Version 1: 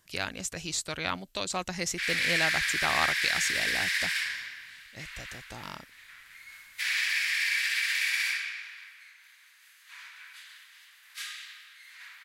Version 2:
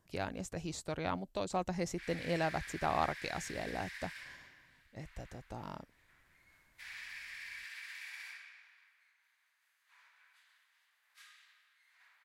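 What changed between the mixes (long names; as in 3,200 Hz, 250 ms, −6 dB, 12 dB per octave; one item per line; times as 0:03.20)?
background −7.5 dB
master: add drawn EQ curve 810 Hz 0 dB, 1,300 Hz −8 dB, 3,000 Hz −14 dB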